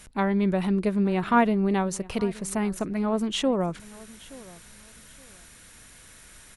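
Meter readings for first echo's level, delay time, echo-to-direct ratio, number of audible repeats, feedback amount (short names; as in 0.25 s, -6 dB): -21.0 dB, 0.873 s, -20.5 dB, 2, 26%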